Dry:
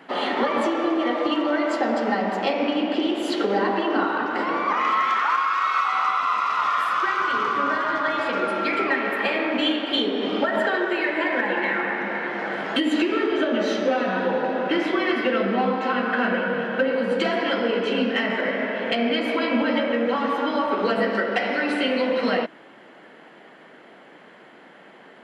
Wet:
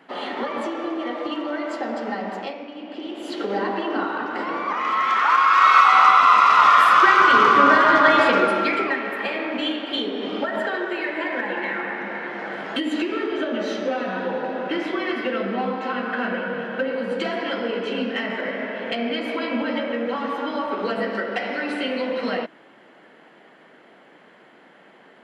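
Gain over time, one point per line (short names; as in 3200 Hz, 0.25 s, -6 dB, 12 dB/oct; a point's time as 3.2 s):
2.38 s -5 dB
2.68 s -15 dB
3.55 s -2.5 dB
4.82 s -2.5 dB
5.67 s +9 dB
8.21 s +9 dB
9.04 s -3 dB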